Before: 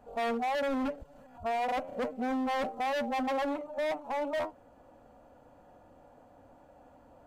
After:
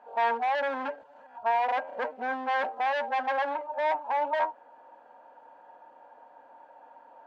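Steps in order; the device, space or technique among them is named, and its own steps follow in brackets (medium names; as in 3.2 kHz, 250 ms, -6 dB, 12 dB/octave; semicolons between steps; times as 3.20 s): tin-can telephone (band-pass 550–3200 Hz; small resonant body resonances 920/1600 Hz, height 15 dB, ringing for 60 ms); 2.87–3.72 s: high-pass 270 Hz; trim +3.5 dB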